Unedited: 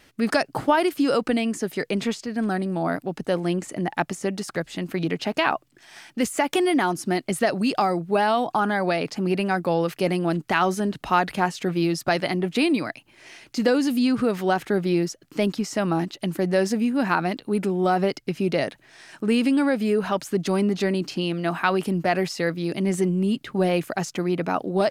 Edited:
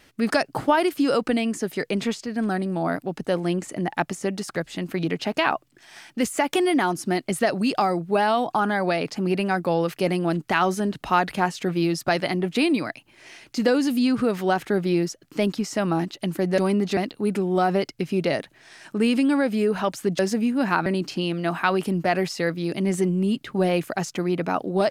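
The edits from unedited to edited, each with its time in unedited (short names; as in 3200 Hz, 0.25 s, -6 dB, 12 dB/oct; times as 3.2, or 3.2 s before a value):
16.58–17.25 swap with 20.47–20.86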